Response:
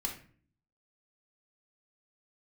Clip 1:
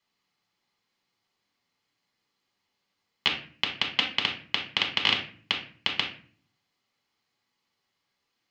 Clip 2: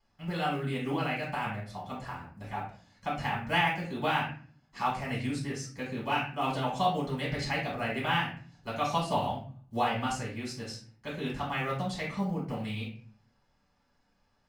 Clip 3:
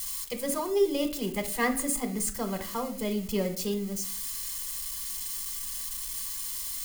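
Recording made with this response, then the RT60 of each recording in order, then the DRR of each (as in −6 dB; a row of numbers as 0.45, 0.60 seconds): 1; 0.45, 0.45, 0.45 seconds; 1.0, −5.5, 6.5 decibels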